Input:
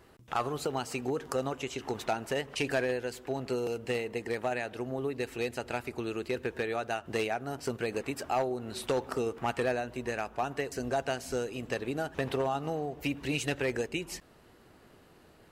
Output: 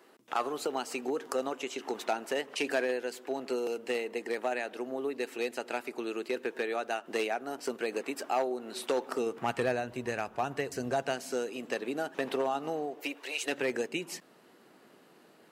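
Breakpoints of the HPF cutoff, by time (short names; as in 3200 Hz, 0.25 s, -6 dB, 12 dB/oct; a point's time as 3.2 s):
HPF 24 dB/oct
9.11 s 240 Hz
9.67 s 83 Hz
10.77 s 83 Hz
11.32 s 210 Hz
12.83 s 210 Hz
13.36 s 570 Hz
13.58 s 180 Hz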